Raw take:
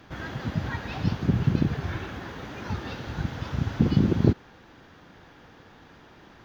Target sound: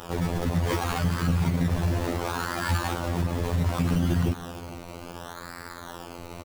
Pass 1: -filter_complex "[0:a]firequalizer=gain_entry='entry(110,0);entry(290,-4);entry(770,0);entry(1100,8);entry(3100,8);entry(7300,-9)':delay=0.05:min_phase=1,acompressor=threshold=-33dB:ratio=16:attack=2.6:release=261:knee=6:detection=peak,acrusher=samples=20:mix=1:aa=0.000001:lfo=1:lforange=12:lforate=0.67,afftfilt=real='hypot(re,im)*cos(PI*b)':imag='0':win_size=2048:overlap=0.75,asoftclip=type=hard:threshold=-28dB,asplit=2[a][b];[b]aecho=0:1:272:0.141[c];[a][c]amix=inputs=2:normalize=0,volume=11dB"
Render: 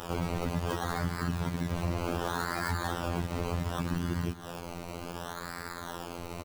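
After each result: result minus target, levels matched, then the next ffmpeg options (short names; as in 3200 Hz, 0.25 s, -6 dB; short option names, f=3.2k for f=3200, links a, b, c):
compressor: peak gain reduction +11 dB; echo 0.189 s early
-filter_complex "[0:a]firequalizer=gain_entry='entry(110,0);entry(290,-4);entry(770,0);entry(1100,8);entry(3100,8);entry(7300,-9)':delay=0.05:min_phase=1,acompressor=threshold=-21dB:ratio=16:attack=2.6:release=261:knee=6:detection=peak,acrusher=samples=20:mix=1:aa=0.000001:lfo=1:lforange=12:lforate=0.67,afftfilt=real='hypot(re,im)*cos(PI*b)':imag='0':win_size=2048:overlap=0.75,asoftclip=type=hard:threshold=-28dB,asplit=2[a][b];[b]aecho=0:1:272:0.141[c];[a][c]amix=inputs=2:normalize=0,volume=11dB"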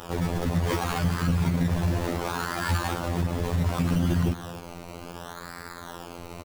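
echo 0.189 s early
-filter_complex "[0:a]firequalizer=gain_entry='entry(110,0);entry(290,-4);entry(770,0);entry(1100,8);entry(3100,8);entry(7300,-9)':delay=0.05:min_phase=1,acompressor=threshold=-21dB:ratio=16:attack=2.6:release=261:knee=6:detection=peak,acrusher=samples=20:mix=1:aa=0.000001:lfo=1:lforange=12:lforate=0.67,afftfilt=real='hypot(re,im)*cos(PI*b)':imag='0':win_size=2048:overlap=0.75,asoftclip=type=hard:threshold=-28dB,asplit=2[a][b];[b]aecho=0:1:461:0.141[c];[a][c]amix=inputs=2:normalize=0,volume=11dB"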